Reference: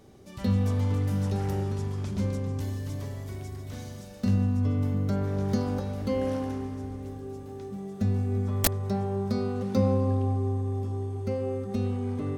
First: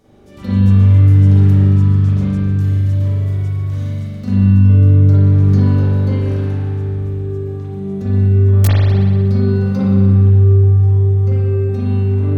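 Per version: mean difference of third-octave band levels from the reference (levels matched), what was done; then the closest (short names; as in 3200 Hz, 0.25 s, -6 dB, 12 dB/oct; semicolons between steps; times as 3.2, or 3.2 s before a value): 8.0 dB: spring tank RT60 1.6 s, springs 41 ms, chirp 20 ms, DRR -9.5 dB; gain -1.5 dB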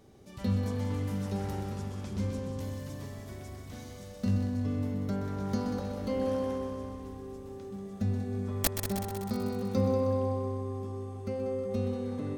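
3.0 dB: multi-head echo 63 ms, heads second and third, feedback 62%, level -9 dB; gain -4 dB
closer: second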